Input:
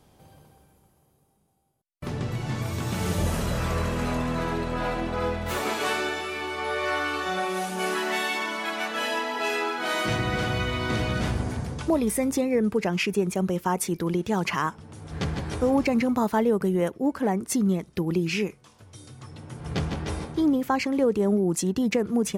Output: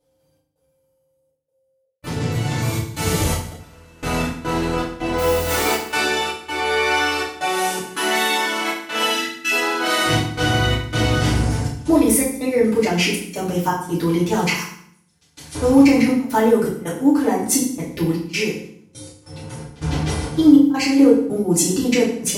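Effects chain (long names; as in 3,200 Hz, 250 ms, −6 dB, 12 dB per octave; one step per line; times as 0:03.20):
steady tone 530 Hz −46 dBFS
0:14.53–0:15.55: first-order pre-emphasis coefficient 0.9
noise gate with hold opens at −34 dBFS
high-shelf EQ 2,700 Hz +8.5 dB
0:05.18–0:05.89: bit-depth reduction 6 bits, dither triangular
gate pattern "xx.xxxx." 81 BPM −24 dB
0:03.49–0:04.03: gate with flip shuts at −26 dBFS, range −26 dB
0:09.11–0:09.51: gain on a spectral selection 340–1,300 Hz −23 dB
feedback delay network reverb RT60 0.62 s, low-frequency decay 1.45×, high-frequency decay 0.9×, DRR −7.5 dB
level −3 dB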